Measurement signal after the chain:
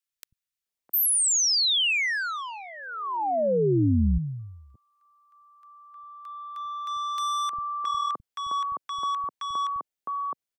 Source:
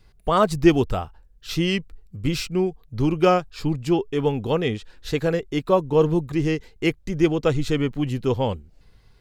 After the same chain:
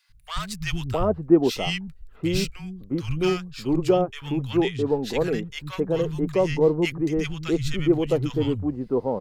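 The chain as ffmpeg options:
-filter_complex "[0:a]acrossover=split=630|2600[s0][s1][s2];[s1]asoftclip=type=tanh:threshold=0.0531[s3];[s0][s3][s2]amix=inputs=3:normalize=0,acrossover=split=160|1200[s4][s5][s6];[s4]adelay=90[s7];[s5]adelay=660[s8];[s7][s8][s6]amix=inputs=3:normalize=0"

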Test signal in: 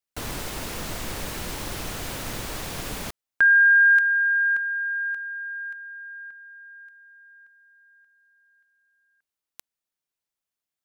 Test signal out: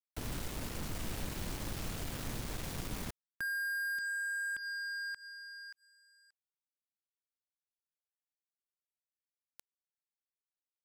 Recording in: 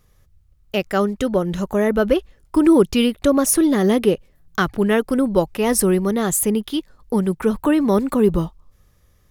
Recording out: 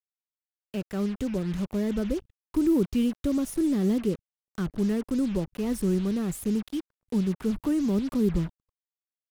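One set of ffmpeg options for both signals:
-filter_complex "[0:a]acrossover=split=320[s0][s1];[s1]acompressor=threshold=0.00708:ratio=2:attack=0.39:release=334:knee=2.83:detection=peak[s2];[s0][s2]amix=inputs=2:normalize=0,acrusher=bits=5:mix=0:aa=0.5,volume=0.596"

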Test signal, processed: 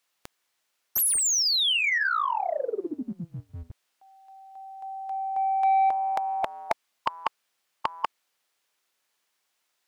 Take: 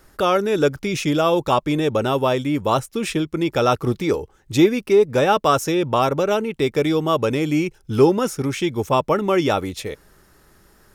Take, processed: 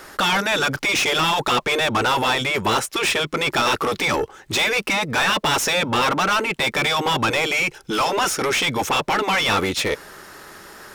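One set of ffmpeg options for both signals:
-filter_complex "[0:a]afftfilt=real='re*lt(hypot(re,im),0.398)':imag='im*lt(hypot(re,im),0.398)':win_size=1024:overlap=0.75,asplit=2[s0][s1];[s1]highpass=f=720:p=1,volume=15.8,asoftclip=type=tanh:threshold=0.282[s2];[s0][s2]amix=inputs=2:normalize=0,lowpass=f=4800:p=1,volume=0.501"

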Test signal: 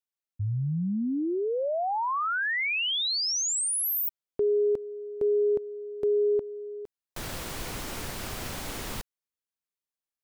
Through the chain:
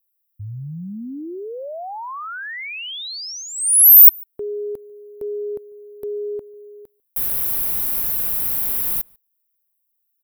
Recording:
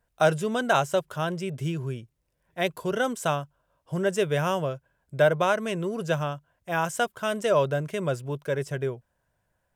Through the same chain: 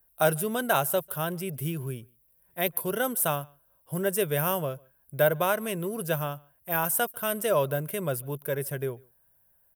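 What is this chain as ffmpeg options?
-filter_complex "[0:a]asplit=2[s0][s1];[s1]adelay=145.8,volume=0.0398,highshelf=f=4000:g=-3.28[s2];[s0][s2]amix=inputs=2:normalize=0,aexciter=amount=11.4:drive=8.2:freq=10000,volume=0.75"

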